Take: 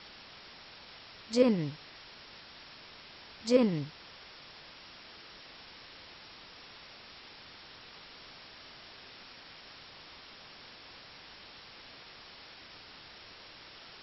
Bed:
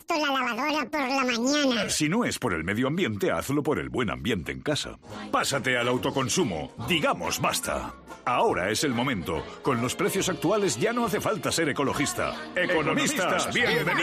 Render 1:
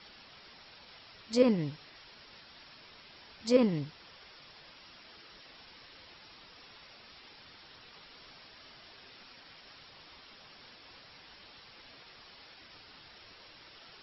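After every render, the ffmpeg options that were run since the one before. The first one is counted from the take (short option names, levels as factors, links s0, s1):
-af "afftdn=nr=6:nf=-52"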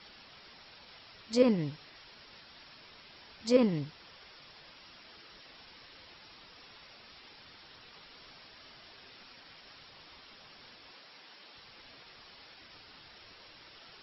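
-filter_complex "[0:a]asettb=1/sr,asplit=3[s0][s1][s2];[s0]atrim=end=10.914[s3];[s1]atrim=start=10.91:end=11.56,asetpts=PTS-STARTPTS,afade=t=in:d=0.004:c=qsin,afade=t=out:st=0.646:d=0.004:c=qsin,highpass=220[s4];[s2]atrim=start=11.556[s5];[s3][s4]acrossfade=d=0.004:c1=hsin:c2=qsin[s6];[s6][s5]acrossfade=d=0.004:c1=qsin:c2=hsin"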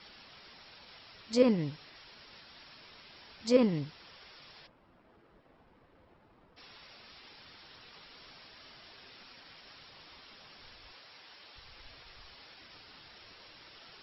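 -filter_complex "[0:a]asplit=3[s0][s1][s2];[s0]afade=t=out:st=4.66:d=0.02[s3];[s1]adynamicsmooth=sensitivity=5.5:basefreq=780,afade=t=in:st=4.66:d=0.02,afade=t=out:st=6.56:d=0.02[s4];[s2]afade=t=in:st=6.56:d=0.02[s5];[s3][s4][s5]amix=inputs=3:normalize=0,asplit=3[s6][s7][s8];[s6]afade=t=out:st=10.6:d=0.02[s9];[s7]asubboost=boost=6:cutoff=76,afade=t=in:st=10.6:d=0.02,afade=t=out:st=12.33:d=0.02[s10];[s8]afade=t=in:st=12.33:d=0.02[s11];[s9][s10][s11]amix=inputs=3:normalize=0"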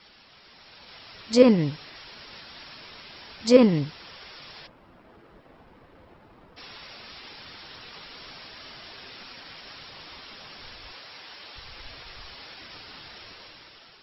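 -af "dynaudnorm=f=240:g=7:m=3.16"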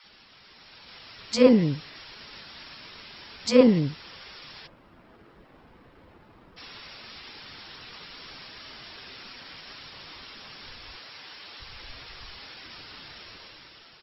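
-filter_complex "[0:a]acrossover=split=650[s0][s1];[s0]adelay=40[s2];[s2][s1]amix=inputs=2:normalize=0"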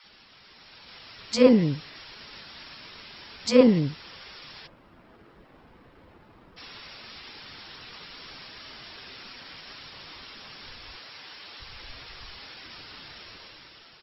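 -af anull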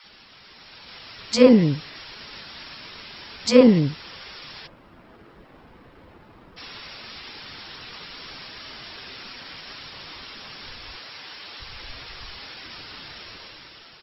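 -af "volume=1.68,alimiter=limit=0.794:level=0:latency=1"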